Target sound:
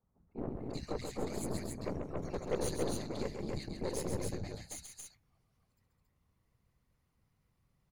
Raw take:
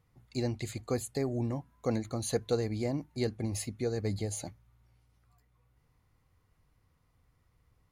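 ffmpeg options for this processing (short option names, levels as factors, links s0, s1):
-filter_complex "[0:a]acrossover=split=160|1400[s0][s1][s2];[s0]adelay=30[s3];[s2]adelay=390[s4];[s3][s1][s4]amix=inputs=3:normalize=0,afftfilt=real='hypot(re,im)*cos(2*PI*random(0))':imag='hypot(re,im)*sin(2*PI*random(1))':win_size=512:overlap=0.75,aeval=exprs='0.0891*(cos(1*acos(clip(val(0)/0.0891,-1,1)))-cos(1*PI/2))+0.01*(cos(8*acos(clip(val(0)/0.0891,-1,1)))-cos(8*PI/2))':c=same,asplit=2[s5][s6];[s6]aecho=0:1:134.1|277:0.501|0.708[s7];[s5][s7]amix=inputs=2:normalize=0,volume=0.891"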